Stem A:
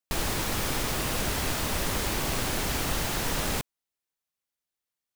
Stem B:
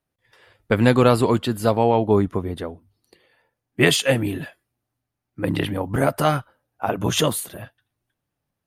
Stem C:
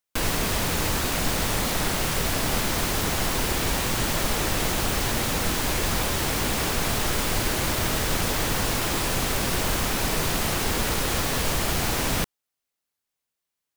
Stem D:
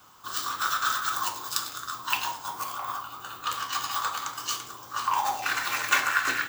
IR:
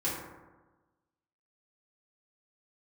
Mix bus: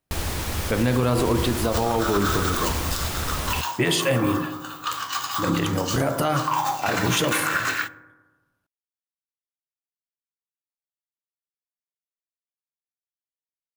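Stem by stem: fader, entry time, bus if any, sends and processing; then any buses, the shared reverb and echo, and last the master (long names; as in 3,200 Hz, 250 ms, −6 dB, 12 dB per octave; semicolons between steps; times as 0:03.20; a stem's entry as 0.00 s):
−0.5 dB, 0.00 s, no send, parametric band 76 Hz +12.5 dB 0.6 octaves
0.0 dB, 0.00 s, send −16 dB, hum removal 52.17 Hz, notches 35
muted
+2.0 dB, 1.40 s, send −22 dB, no processing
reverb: on, RT60 1.2 s, pre-delay 3 ms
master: brickwall limiter −12 dBFS, peak gain reduction 9.5 dB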